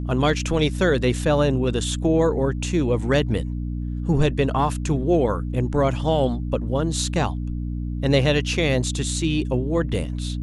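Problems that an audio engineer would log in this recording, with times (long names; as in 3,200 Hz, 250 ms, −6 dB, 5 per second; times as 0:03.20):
mains hum 60 Hz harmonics 5 −27 dBFS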